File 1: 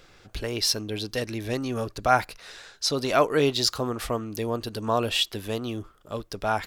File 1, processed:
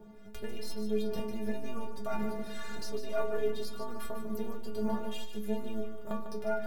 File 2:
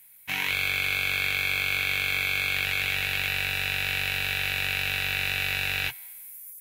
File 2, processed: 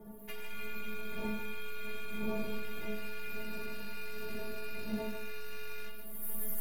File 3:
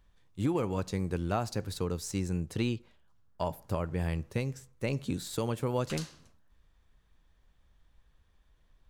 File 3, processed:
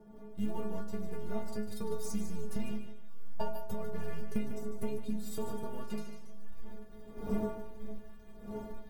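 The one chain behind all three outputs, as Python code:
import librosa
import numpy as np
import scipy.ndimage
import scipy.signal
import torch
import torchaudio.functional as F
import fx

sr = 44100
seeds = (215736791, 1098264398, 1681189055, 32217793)

p1 = np.where(x < 0.0, 10.0 ** (-7.0 / 20.0) * x, x)
p2 = fx.recorder_agc(p1, sr, target_db=-14.5, rise_db_per_s=48.0, max_gain_db=30)
p3 = fx.dmg_wind(p2, sr, seeds[0], corner_hz=380.0, level_db=-33.0)
p4 = fx.peak_eq(p3, sr, hz=4700.0, db=-10.0, octaves=2.8)
p5 = fx.quant_float(p4, sr, bits=4)
p6 = fx.stiff_resonator(p5, sr, f0_hz=210.0, decay_s=0.44, stiffness=0.008)
p7 = p6 + fx.echo_feedback(p6, sr, ms=149, feedback_pct=26, wet_db=-9, dry=0)
y = p7 * librosa.db_to_amplitude(3.0)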